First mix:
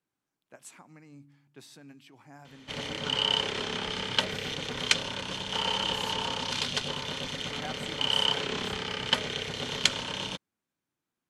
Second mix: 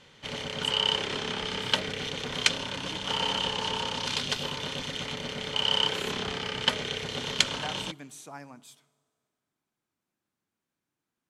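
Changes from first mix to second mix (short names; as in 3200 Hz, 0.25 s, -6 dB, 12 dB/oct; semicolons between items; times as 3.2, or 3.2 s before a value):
background: entry -2.45 s; reverb: on, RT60 2.1 s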